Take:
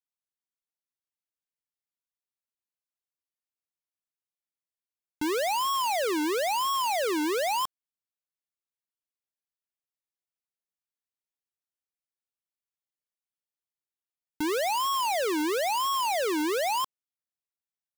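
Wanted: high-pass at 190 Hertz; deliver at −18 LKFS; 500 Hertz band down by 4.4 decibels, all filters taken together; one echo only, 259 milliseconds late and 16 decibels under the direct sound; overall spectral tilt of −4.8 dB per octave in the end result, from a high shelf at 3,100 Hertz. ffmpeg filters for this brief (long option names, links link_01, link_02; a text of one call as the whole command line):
ffmpeg -i in.wav -af "highpass=190,equalizer=frequency=500:width_type=o:gain=-5.5,highshelf=frequency=3100:gain=-3,aecho=1:1:259:0.158,volume=11.5dB" out.wav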